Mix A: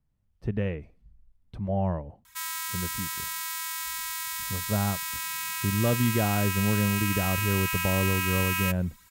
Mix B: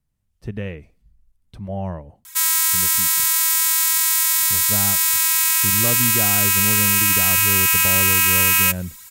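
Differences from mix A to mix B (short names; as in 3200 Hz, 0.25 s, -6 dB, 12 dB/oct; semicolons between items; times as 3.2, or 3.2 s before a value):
background +6.0 dB; master: add EQ curve 850 Hz 0 dB, 4500 Hz +7 dB, 7900 Hz +12 dB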